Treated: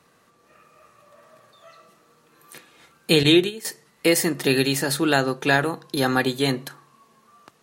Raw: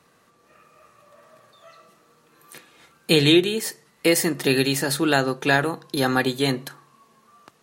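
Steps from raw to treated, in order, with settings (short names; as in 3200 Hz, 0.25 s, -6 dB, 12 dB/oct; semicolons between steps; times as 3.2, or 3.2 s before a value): 3.23–3.65 gate -21 dBFS, range -11 dB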